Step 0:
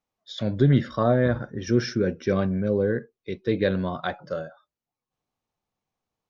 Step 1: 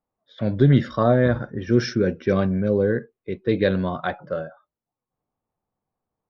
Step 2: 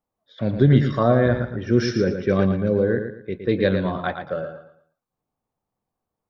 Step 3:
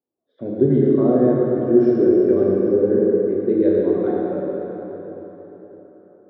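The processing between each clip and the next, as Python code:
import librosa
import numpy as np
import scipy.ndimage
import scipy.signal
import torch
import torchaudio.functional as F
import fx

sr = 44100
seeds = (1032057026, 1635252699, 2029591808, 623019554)

y1 = fx.env_lowpass(x, sr, base_hz=1200.0, full_db=-16.5)
y1 = y1 * 10.0 ** (3.0 / 20.0)
y2 = fx.echo_feedback(y1, sr, ms=114, feedback_pct=31, wet_db=-8.0)
y3 = fx.bandpass_q(y2, sr, hz=350.0, q=3.0)
y3 = fx.rev_plate(y3, sr, seeds[0], rt60_s=4.3, hf_ratio=0.7, predelay_ms=0, drr_db=-4.0)
y3 = y3 * 10.0 ** (4.5 / 20.0)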